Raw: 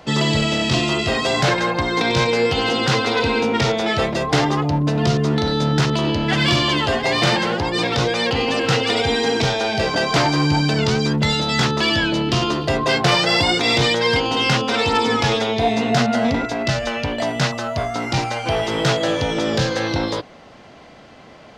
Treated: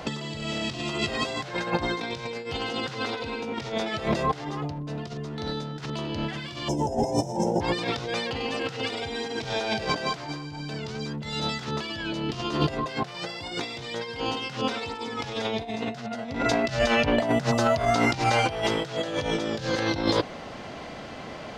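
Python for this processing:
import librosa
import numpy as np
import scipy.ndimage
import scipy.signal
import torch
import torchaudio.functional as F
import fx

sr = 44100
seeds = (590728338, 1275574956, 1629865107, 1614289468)

y = fx.spec_box(x, sr, start_s=6.68, length_s=0.93, low_hz=1000.0, high_hz=5100.0, gain_db=-29)
y = fx.peak_eq(y, sr, hz=fx.line((17.04, 9000.0), (17.65, 2000.0)), db=-8.0, octaves=2.5, at=(17.04, 17.65), fade=0.02)
y = fx.over_compress(y, sr, threshold_db=-25.0, ratio=-0.5)
y = y * librosa.db_to_amplitude(-2.0)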